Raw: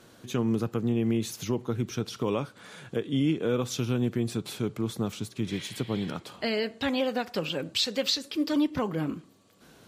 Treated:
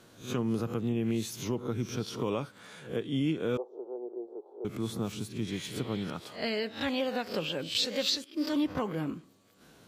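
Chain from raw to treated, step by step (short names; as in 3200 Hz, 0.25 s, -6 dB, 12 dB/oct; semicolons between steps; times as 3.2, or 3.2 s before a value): spectral swells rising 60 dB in 0.34 s; 3.57–4.65 elliptic band-pass 370–870 Hz, stop band 50 dB; 8.24–8.83 gate -30 dBFS, range -14 dB; gain -4 dB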